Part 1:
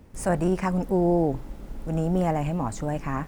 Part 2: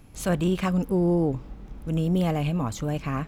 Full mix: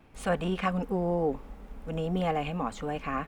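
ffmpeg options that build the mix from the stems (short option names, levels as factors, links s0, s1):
-filter_complex "[0:a]volume=0.299[s0];[1:a]acrossover=split=370 3600:gain=0.251 1 0.0708[s1][s2][s3];[s1][s2][s3]amix=inputs=3:normalize=0,adelay=2.7,volume=1.06[s4];[s0][s4]amix=inputs=2:normalize=0"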